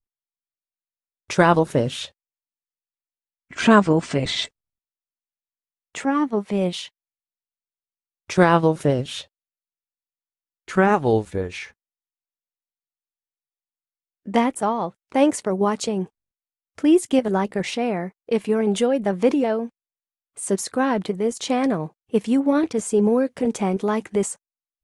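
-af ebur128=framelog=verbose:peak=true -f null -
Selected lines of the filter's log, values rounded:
Integrated loudness:
  I:         -21.5 LUFS
  Threshold: -32.0 LUFS
Loudness range:
  LRA:         6.4 LU
  Threshold: -43.7 LUFS
  LRA low:   -28.2 LUFS
  LRA high:  -21.8 LUFS
True peak:
  Peak:       -3.3 dBFS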